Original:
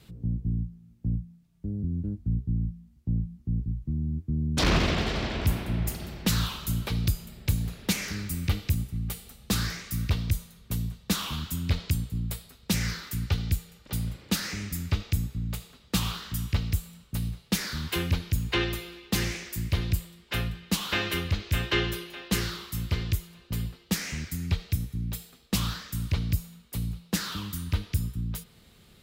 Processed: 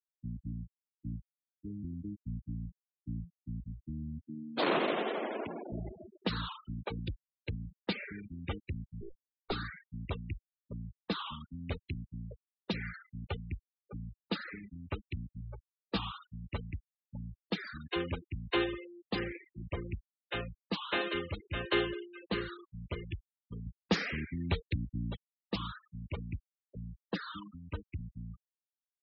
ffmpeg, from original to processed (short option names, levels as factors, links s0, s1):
-filter_complex "[0:a]asettb=1/sr,asplit=3[s0][s1][s2];[s0]atrim=end=4.224[s3];[s1]atrim=start=4.22:end=5.72,asetpts=PTS-STARTPTS,afade=t=in:d=0.004:c=qsin,afade=t=out:st=1.496:d=0.004:c=qsin,highpass=220,lowpass=5100[s4];[s2]atrim=start=5.716[s5];[s3][s4]acrossfade=d=0.004:c1=hsin:c2=qsin[s6];[s6][s5]acrossfade=d=0.004:c1=qsin:c2=hsin,asettb=1/sr,asplit=3[s7][s8][s9];[s7]atrim=end=9.014[s10];[s8]atrim=start=9.01:end=9.52,asetpts=PTS-STARTPTS,afade=t=in:d=0.004:c=qsin,afade=t=out:st=0.506:d=0.004:c=qsin,aeval=exprs='abs(val(0))':c=same[s11];[s9]atrim=start=9.516[s12];[s10][s11]acrossfade=d=0.004:c1=hsin:c2=qsin[s13];[s13][s12]acrossfade=d=0.004:c1=qsin:c2=hsin,asettb=1/sr,asplit=3[s14][s15][s16];[s14]atrim=end=15.394[s17];[s15]atrim=start=15.39:end=16.06,asetpts=PTS-STARTPTS,afade=t=in:d=0.004:c=qsin,afade=t=out:st=0.666:d=0.004:c=qsin,asplit=2[s18][s19];[s19]adelay=15,volume=0.447[s20];[s18][s20]amix=inputs=2:normalize=0,atrim=end_sample=29547[s21];[s16]atrim=start=16.056[s22];[s17][s21]acrossfade=d=0.004:c1=hsin:c2=qsin[s23];[s23][s22]acrossfade=d=0.004:c1=qsin:c2=hsin,asettb=1/sr,asplit=3[s24][s25][s26];[s24]atrim=end=19.194[s27];[s25]atrim=start=19.19:end=19.9,asetpts=PTS-STARTPTS,afade=t=in:d=0.004:c=qsin,afade=t=out:st=0.706:d=0.004:c=qsin,lowpass=3000[s28];[s26]atrim=start=19.896[s29];[s27][s28]acrossfade=d=0.004:c1=hsin:c2=qsin[s30];[s30][s29]acrossfade=d=0.004:c1=qsin:c2=hsin,asettb=1/sr,asplit=3[s31][s32][s33];[s31]atrim=end=23.664[s34];[s32]atrim=start=23.66:end=25.16,asetpts=PTS-STARTPTS,afade=t=in:d=0.004:c=qsin,afade=t=out:st=1.496:d=0.004:c=qsin,acontrast=74[s35];[s33]atrim=start=25.156[s36];[s34][s35]acrossfade=d=0.004:c1=hsin:c2=qsin[s37];[s37][s36]acrossfade=d=0.004:c1=qsin:c2=hsin,acrossover=split=320 4300:gain=0.141 1 0.0631[s38][s39][s40];[s38][s39][s40]amix=inputs=3:normalize=0,afftfilt=real='re*gte(hypot(re,im),0.0251)':imag='im*gte(hypot(re,im),0.0251)':win_size=1024:overlap=0.75,equalizer=f=2200:t=o:w=2.4:g=-9,volume=1.5"